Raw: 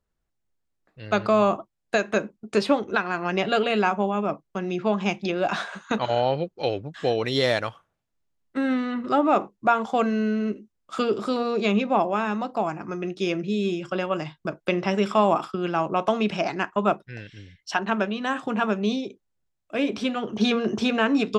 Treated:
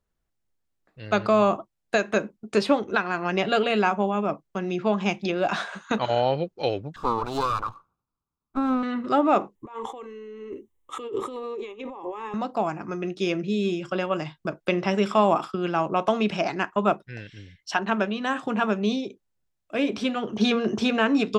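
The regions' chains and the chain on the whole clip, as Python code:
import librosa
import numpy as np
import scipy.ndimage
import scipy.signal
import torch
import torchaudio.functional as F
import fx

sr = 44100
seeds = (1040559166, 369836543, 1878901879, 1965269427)

y = fx.chain(x, sr, fx.lower_of_two(delay_ms=0.8),
    fx.high_shelf_res(hz=1500.0, db=-8.0, q=3.0), at=(6.96, 8.83))
y = fx.chain(y, sr, fx.peak_eq(hz=2500.0, db=-8.5, octaves=0.28),
    fx.over_compress(threshold_db=-31.0, ratio=-1.0),
    fx.fixed_phaser(hz=980.0, stages=8), at=(9.55, 12.34))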